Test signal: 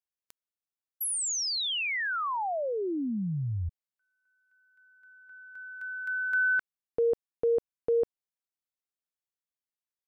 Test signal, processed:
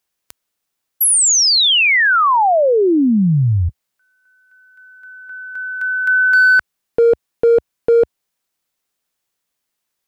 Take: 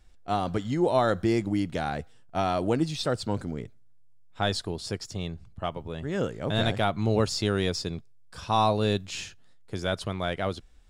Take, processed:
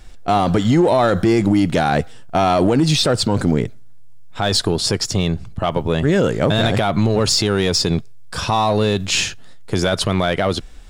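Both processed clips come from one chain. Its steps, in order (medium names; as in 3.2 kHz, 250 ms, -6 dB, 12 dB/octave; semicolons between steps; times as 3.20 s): peaking EQ 69 Hz -5 dB 0.74 oct; in parallel at -6 dB: hard clipper -27.5 dBFS; on the sum: loudness maximiser +21 dB; trim -6.5 dB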